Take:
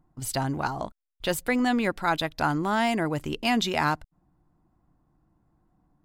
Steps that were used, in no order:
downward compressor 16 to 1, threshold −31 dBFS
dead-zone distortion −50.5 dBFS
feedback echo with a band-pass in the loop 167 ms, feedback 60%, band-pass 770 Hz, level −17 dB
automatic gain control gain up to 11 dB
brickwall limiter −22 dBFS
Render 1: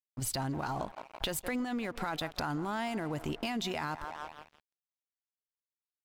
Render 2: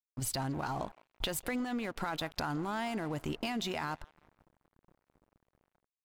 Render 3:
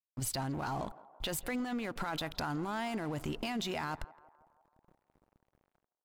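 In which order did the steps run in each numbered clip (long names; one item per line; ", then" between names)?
feedback echo with a band-pass in the loop, then brickwall limiter, then dead-zone distortion, then automatic gain control, then downward compressor
brickwall limiter, then automatic gain control, then downward compressor, then feedback echo with a band-pass in the loop, then dead-zone distortion
automatic gain control, then brickwall limiter, then downward compressor, then dead-zone distortion, then feedback echo with a band-pass in the loop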